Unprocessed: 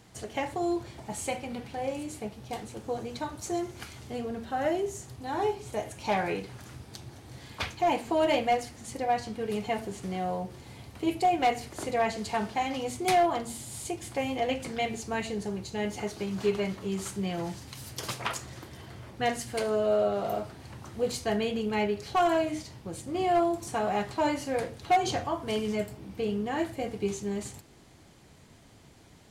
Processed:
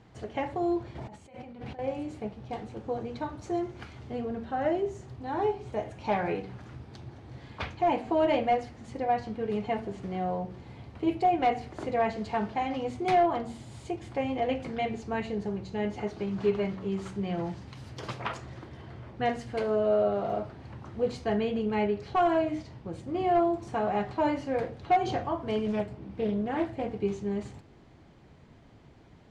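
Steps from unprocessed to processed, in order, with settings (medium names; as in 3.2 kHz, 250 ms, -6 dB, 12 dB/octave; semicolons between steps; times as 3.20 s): de-hum 94.35 Hz, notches 8; 0.95–1.79 s: compressor with a negative ratio -45 dBFS, ratio -1; tape spacing loss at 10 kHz 25 dB; 25.66–26.93 s: loudspeaker Doppler distortion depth 0.35 ms; trim +2 dB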